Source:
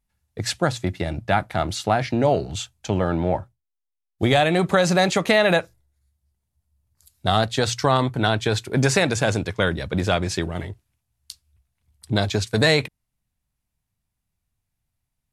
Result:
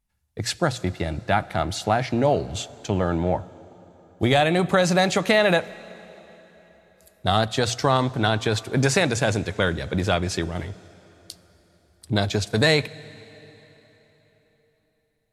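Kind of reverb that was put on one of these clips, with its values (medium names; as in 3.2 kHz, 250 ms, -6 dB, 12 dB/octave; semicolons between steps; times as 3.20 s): plate-style reverb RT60 4.1 s, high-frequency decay 0.85×, DRR 18.5 dB; trim -1 dB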